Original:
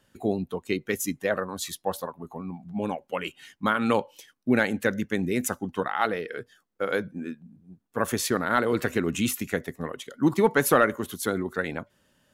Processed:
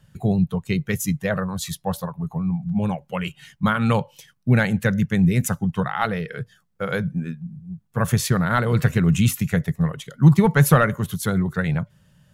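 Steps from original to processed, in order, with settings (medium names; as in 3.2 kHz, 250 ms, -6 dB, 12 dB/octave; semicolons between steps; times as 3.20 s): resonant low shelf 210 Hz +10.5 dB, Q 3; trim +2.5 dB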